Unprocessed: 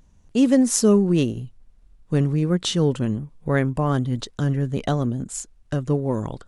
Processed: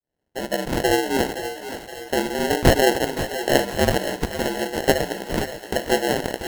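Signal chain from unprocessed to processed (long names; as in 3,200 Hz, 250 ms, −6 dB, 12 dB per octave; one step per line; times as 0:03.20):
fade in at the beginning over 1.77 s
inverse Chebyshev high-pass filter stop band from 180 Hz, stop band 40 dB
parametric band 3,200 Hz +6.5 dB 0.69 octaves
mains-hum notches 60/120/180/240/300/360/420/480/540/600 Hz
in parallel at −2.5 dB: downward compressor, threshold −34 dBFS, peak gain reduction 15.5 dB
on the sum: decimation without filtering 37×
ring modulation 65 Hz
on a send: feedback echo with a high-pass in the loop 519 ms, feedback 59%, high-pass 500 Hz, level −10.5 dB
on the sum: feedback echo at a low word length 538 ms, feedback 55%, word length 8 bits, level −14 dB
level +8.5 dB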